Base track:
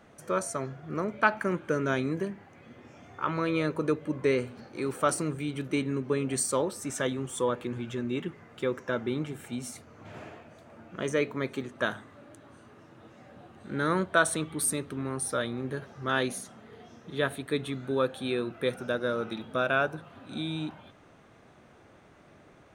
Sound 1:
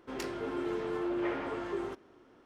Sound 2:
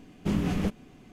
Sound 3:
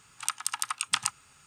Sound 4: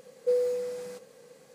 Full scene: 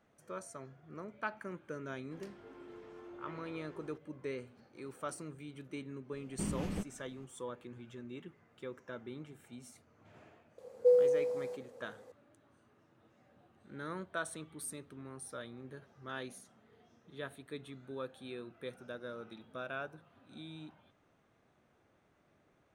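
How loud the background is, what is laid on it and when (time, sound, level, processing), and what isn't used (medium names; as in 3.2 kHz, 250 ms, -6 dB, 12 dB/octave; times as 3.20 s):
base track -15 dB
2.03 s: add 1 -17.5 dB
6.13 s: add 2 -10.5 dB
10.58 s: add 4 -12 dB + high-order bell 610 Hz +12.5 dB
not used: 3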